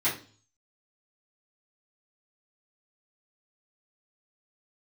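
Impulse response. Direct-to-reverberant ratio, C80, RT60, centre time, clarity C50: -12.0 dB, 14.5 dB, 0.40 s, 27 ms, 9.0 dB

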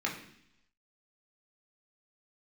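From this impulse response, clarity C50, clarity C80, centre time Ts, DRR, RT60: 8.0 dB, 11.0 dB, 25 ms, -2.5 dB, 0.70 s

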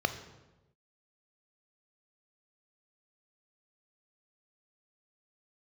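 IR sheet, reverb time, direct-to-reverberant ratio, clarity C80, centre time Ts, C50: 1.1 s, 9.0 dB, 13.5 dB, 11 ms, 12.0 dB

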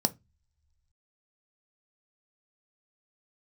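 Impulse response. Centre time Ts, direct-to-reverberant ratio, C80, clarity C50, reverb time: 3 ms, 10.0 dB, 32.0 dB, 23.0 dB, no single decay rate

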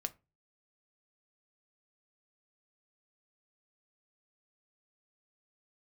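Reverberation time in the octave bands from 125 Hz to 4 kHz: 0.50 s, 0.35 s, 0.30 s, 0.25 s, 0.25 s, 0.15 s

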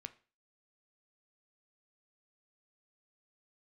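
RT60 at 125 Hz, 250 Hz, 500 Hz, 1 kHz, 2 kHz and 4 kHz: 0.40 s, 0.35 s, 0.35 s, 0.35 s, 0.35 s, 0.35 s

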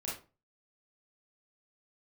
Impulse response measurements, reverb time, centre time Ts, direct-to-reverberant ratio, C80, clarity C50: 0.35 s, 41 ms, -6.5 dB, 11.5 dB, 4.0 dB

